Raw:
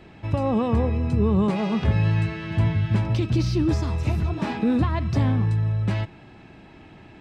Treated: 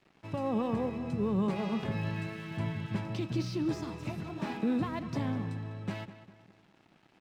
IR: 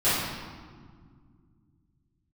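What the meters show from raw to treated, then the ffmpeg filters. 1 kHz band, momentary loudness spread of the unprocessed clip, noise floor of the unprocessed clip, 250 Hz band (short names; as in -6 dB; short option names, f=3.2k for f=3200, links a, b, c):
-8.0 dB, 5 LU, -48 dBFS, -8.5 dB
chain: -filter_complex "[0:a]highpass=f=130:w=0.5412,highpass=f=130:w=1.3066,aeval=exprs='sgn(val(0))*max(abs(val(0))-0.00447,0)':c=same,asplit=2[a][b];[b]adelay=200,lowpass=f=3.1k:p=1,volume=-12.5dB,asplit=2[c][d];[d]adelay=200,lowpass=f=3.1k:p=1,volume=0.46,asplit=2[e][f];[f]adelay=200,lowpass=f=3.1k:p=1,volume=0.46,asplit=2[g][h];[h]adelay=200,lowpass=f=3.1k:p=1,volume=0.46,asplit=2[i][j];[j]adelay=200,lowpass=f=3.1k:p=1,volume=0.46[k];[c][e][g][i][k]amix=inputs=5:normalize=0[l];[a][l]amix=inputs=2:normalize=0,volume=-8dB"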